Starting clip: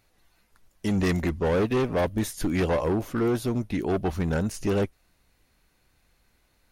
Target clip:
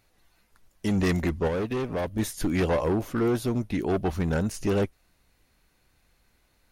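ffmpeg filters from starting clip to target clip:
-filter_complex "[0:a]asettb=1/sr,asplit=3[s0][s1][s2];[s0]atrim=end=1.474[s3];[s1]atrim=start=1.47:end=2.19,asetpts=PTS-STARTPTS,afade=t=in:d=0.004:c=qsin,afade=t=out:st=0.716:d=0.004:c=qsin,acompressor=threshold=0.0447:ratio=4[s4];[s2]atrim=start=2.186[s5];[s3][s4]acrossfade=d=0.004:c1=hsin:c2=qsin[s6];[s6][s5]acrossfade=d=0.004:c1=qsin:c2=hsin"

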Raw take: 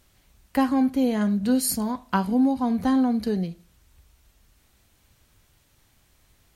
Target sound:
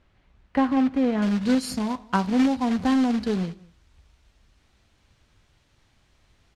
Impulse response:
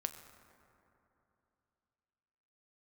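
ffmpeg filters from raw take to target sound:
-filter_complex "[0:a]acrusher=bits=3:mode=log:mix=0:aa=0.000001,asetnsamples=n=441:p=0,asendcmd='1.22 lowpass f 5200',lowpass=2500,asplit=2[s0][s1];[s1]adelay=198.3,volume=0.0631,highshelf=f=4000:g=-4.46[s2];[s0][s2]amix=inputs=2:normalize=0"

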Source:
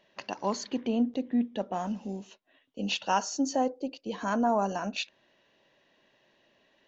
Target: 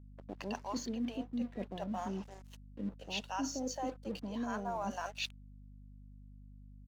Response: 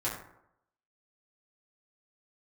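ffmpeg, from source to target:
-filter_complex "[0:a]acrossover=split=540[s0][s1];[s1]adelay=220[s2];[s0][s2]amix=inputs=2:normalize=0,aeval=exprs='sgn(val(0))*max(abs(val(0))-0.00237,0)':c=same,areverse,acompressor=threshold=0.0112:ratio=4,areverse,aeval=exprs='val(0)+0.00178*(sin(2*PI*50*n/s)+sin(2*PI*2*50*n/s)/2+sin(2*PI*3*50*n/s)/3+sin(2*PI*4*50*n/s)/4+sin(2*PI*5*50*n/s)/5)':c=same,volume=1.33"

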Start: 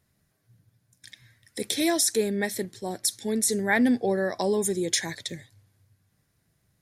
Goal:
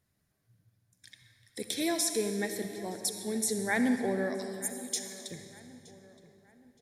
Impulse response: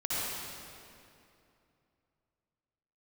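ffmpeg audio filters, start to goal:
-filter_complex "[0:a]asettb=1/sr,asplit=3[s0][s1][s2];[s0]atrim=end=4.364[s3];[s1]atrim=start=4.36:end=5.3,asetpts=PTS-STARTPTS,afade=t=in:d=0.004:c=qsin,afade=t=out:st=0.936:d=0.004:c=qsin,aderivative[s4];[s2]atrim=start=5.296[s5];[s3][s4]acrossfade=d=0.004:c1=hsin:c2=qsin[s6];[s6][s5]acrossfade=d=0.004:c1=qsin:c2=hsin,asplit=2[s7][s8];[s8]adelay=920,lowpass=f=2900:p=1,volume=0.133,asplit=2[s9][s10];[s10]adelay=920,lowpass=f=2900:p=1,volume=0.42,asplit=2[s11][s12];[s12]adelay=920,lowpass=f=2900:p=1,volume=0.42[s13];[s7][s9][s11][s13]amix=inputs=4:normalize=0,asplit=2[s14][s15];[1:a]atrim=start_sample=2205[s16];[s15][s16]afir=irnorm=-1:irlink=0,volume=0.237[s17];[s14][s17]amix=inputs=2:normalize=0,volume=0.398"

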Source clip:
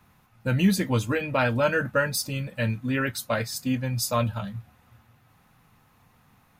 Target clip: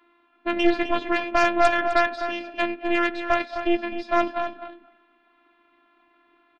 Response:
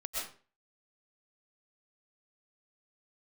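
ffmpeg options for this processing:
-filter_complex "[0:a]asplit=2[s0][s1];[1:a]atrim=start_sample=2205,atrim=end_sample=6174,adelay=94[s2];[s1][s2]afir=irnorm=-1:irlink=0,volume=0.15[s3];[s0][s3]amix=inputs=2:normalize=0,highpass=f=150:t=q:w=0.5412,highpass=f=150:t=q:w=1.307,lowpass=f=3500:t=q:w=0.5176,lowpass=f=3500:t=q:w=0.7071,lowpass=f=3500:t=q:w=1.932,afreqshift=61,afftfilt=real='hypot(re,im)*cos(PI*b)':imag='0':win_size=512:overlap=0.75,aeval=exprs='0.299*(cos(1*acos(clip(val(0)/0.299,-1,1)))-cos(1*PI/2))+0.0473*(cos(6*acos(clip(val(0)/0.299,-1,1)))-cos(6*PI/2))':c=same,asplit=2[s4][s5];[s5]adelay=256.6,volume=0.355,highshelf=f=4000:g=-5.77[s6];[s4][s6]amix=inputs=2:normalize=0,volume=1.68"

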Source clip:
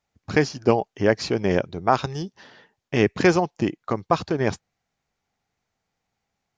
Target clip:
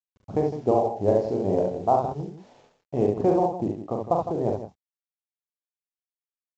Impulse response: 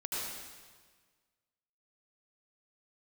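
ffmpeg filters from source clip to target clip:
-filter_complex "[0:a]firequalizer=gain_entry='entry(340,0);entry(720,6);entry(1600,-23)':delay=0.05:min_phase=1,acrusher=bits=8:mix=0:aa=0.000001,asettb=1/sr,asplit=3[s0][s1][s2];[s0]atrim=end=0.484[s3];[s1]atrim=start=0.48:end=1.81,asetpts=PTS-STARTPTS,afade=t=in:d=0.004:c=qsin,afade=t=out:st=1.326:d=0.004:c=qsin,asplit=2[s4][s5];[s5]adelay=38,volume=0.501[s6];[s4][s6]amix=inputs=2:normalize=0,atrim=end_sample=58653[s7];[s2]atrim=start=1.806[s8];[s3][s7]acrossfade=d=0.004:c1=hsin:c2=qsin[s9];[s9][s8]acrossfade=d=0.004:c1=qsin:c2=hsin,asettb=1/sr,asplit=3[s10][s11][s12];[s10]atrim=end=3.044[s13];[s11]atrim=start=3.04:end=4.05,asetpts=PTS-STARTPTS,afade=t=in:d=0.004:c=qsin,afade=t=out:st=1.006:d=0.004:c=qsin,aemphasis=mode=reproduction:type=cd[s14];[s12]atrim=start=4.046[s15];[s13][s14]acrossfade=d=0.004:c1=hsin:c2=qsin[s16];[s16][s15]acrossfade=d=0.004:c1=qsin:c2=hsin,aecho=1:1:41|49|68|70|158|185:0.596|0.15|0.133|0.631|0.299|0.126,volume=0.501" -ar 16000 -c:a pcm_mulaw

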